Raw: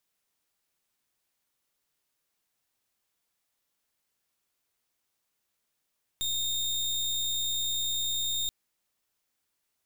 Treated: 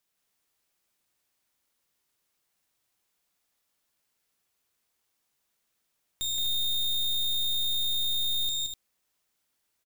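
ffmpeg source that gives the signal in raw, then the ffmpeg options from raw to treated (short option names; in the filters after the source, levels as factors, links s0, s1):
-f lavfi -i "aevalsrc='0.0316*(2*lt(mod(3670*t,1),0.31)-1)':d=2.28:s=44100"
-af "aecho=1:1:172|247.8:0.708|0.447"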